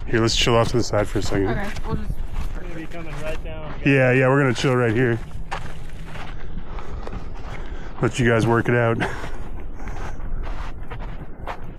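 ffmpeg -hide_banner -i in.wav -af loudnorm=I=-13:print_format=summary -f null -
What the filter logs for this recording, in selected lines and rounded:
Input Integrated:    -22.2 LUFS
Input True Peak:      -5.9 dBTP
Input LRA:             9.4 LU
Input Threshold:     -34.1 LUFS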